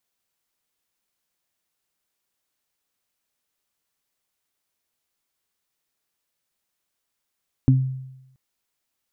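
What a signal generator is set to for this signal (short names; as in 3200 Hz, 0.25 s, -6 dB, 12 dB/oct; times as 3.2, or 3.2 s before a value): additive tone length 0.68 s, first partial 131 Hz, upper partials -2 dB, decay 0.90 s, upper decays 0.23 s, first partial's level -11 dB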